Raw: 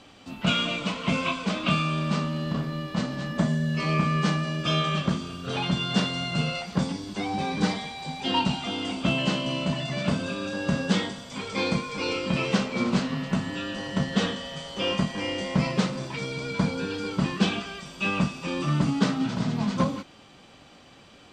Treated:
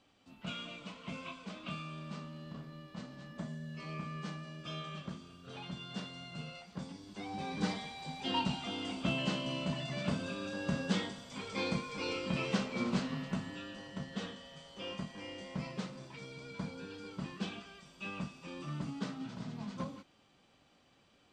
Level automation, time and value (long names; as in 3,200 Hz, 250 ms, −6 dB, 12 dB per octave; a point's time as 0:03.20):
0:06.77 −18 dB
0:07.72 −9 dB
0:13.15 −9 dB
0:13.96 −16 dB